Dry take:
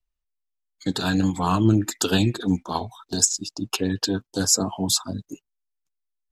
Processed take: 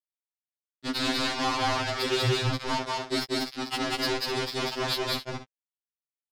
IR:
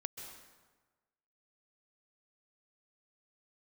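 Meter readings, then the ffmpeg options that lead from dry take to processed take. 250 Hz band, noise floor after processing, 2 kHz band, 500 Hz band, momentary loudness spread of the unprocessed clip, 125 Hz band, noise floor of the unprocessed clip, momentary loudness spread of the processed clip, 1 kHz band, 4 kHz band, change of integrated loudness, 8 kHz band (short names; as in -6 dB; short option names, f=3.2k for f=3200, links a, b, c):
-10.0 dB, under -85 dBFS, +3.0 dB, -0.5 dB, 11 LU, -8.0 dB, -81 dBFS, 6 LU, 0.0 dB, -0.5 dB, -5.0 dB, -16.0 dB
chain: -af "lowshelf=f=62:g=-6,bandreject=f=347.9:t=h:w=4,bandreject=f=695.8:t=h:w=4,bandreject=f=1.0437k:t=h:w=4,bandreject=f=1.3916k:t=h:w=4,bandreject=f=1.7395k:t=h:w=4,flanger=delay=1.8:depth=2.2:regen=-28:speed=0.4:shape=sinusoidal,acompressor=threshold=-24dB:ratio=12,aresample=11025,acrusher=bits=4:mix=0:aa=0.000001,aresample=44100,acontrast=30,asoftclip=type=tanh:threshold=-22dB,aecho=1:1:192.4|253.6:0.891|0.282,afftfilt=real='re*2.45*eq(mod(b,6),0)':imag='im*2.45*eq(mod(b,6),0)':win_size=2048:overlap=0.75,volume=3.5dB"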